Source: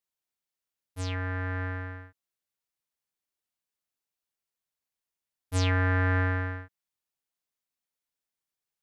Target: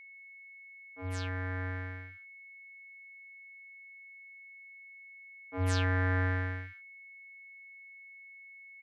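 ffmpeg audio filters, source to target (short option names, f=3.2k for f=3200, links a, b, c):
-filter_complex "[0:a]acrossover=split=210|1900[a][b][c];[a]adelay=50[d];[c]adelay=140[e];[d][b][e]amix=inputs=3:normalize=0,aeval=exprs='val(0)+0.00501*sin(2*PI*2200*n/s)':c=same,volume=-3.5dB"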